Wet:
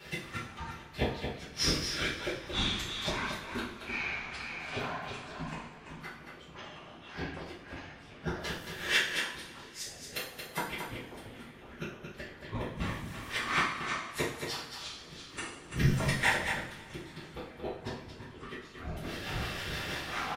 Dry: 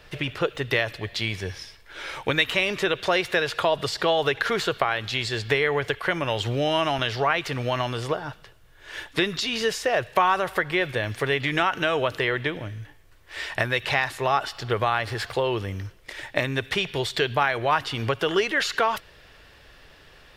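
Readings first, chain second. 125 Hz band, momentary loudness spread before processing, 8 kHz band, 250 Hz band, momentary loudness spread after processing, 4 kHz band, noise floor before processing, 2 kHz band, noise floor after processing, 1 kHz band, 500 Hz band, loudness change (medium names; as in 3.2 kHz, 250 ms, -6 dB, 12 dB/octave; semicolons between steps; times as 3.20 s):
-6.5 dB, 10 LU, -2.5 dB, -8.0 dB, 16 LU, -8.0 dB, -52 dBFS, -9.0 dB, -51 dBFS, -13.0 dB, -16.5 dB, -10.5 dB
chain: high-pass 83 Hz 12 dB/octave; treble shelf 4.2 kHz +4.5 dB; compression 6:1, threshold -29 dBFS, peak gain reduction 14 dB; inverted gate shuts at -24 dBFS, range -33 dB; rotary cabinet horn 0.65 Hz, later 6.3 Hz, at 3.87 s; tremolo saw up 0.55 Hz, depth 65%; whisper effect; on a send: delay 226 ms -6.5 dB; on the sum: two-slope reverb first 0.48 s, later 3.2 s, from -22 dB, DRR -8.5 dB; ever faster or slower copies 154 ms, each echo -7 st, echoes 2; trim +7 dB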